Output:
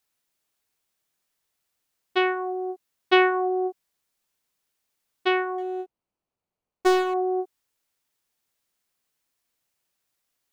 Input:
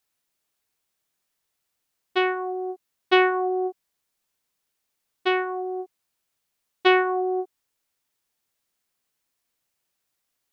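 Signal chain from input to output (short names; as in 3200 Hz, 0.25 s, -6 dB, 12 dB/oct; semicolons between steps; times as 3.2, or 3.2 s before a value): 5.58–7.14 median filter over 25 samples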